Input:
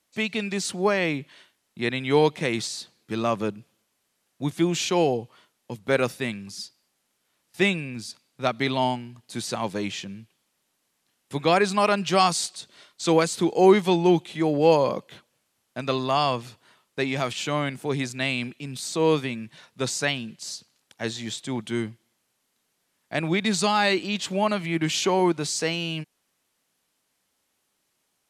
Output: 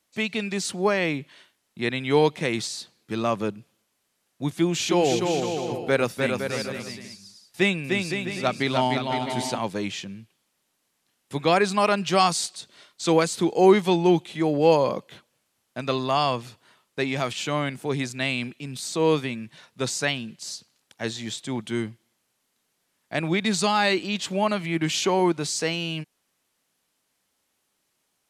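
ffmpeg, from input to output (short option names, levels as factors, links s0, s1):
-filter_complex "[0:a]asettb=1/sr,asplit=3[s0][s1][s2];[s0]atrim=end=4.504[s3];[s1]atrim=start=4.5:end=9.59,asetpts=PTS-STARTPTS,afade=t=in:d=0.004:c=qsin,afade=t=out:st=5.086:d=0.004:c=qsin,aecho=1:1:300|510|657|759.9|831.9:0.631|0.398|0.251|0.158|0.1,atrim=end_sample=224469[s4];[s2]atrim=start=9.586[s5];[s3][s4]acrossfade=d=0.004:c1=hsin:c2=qsin[s6];[s6][s5]acrossfade=d=0.004:c1=qsin:c2=hsin"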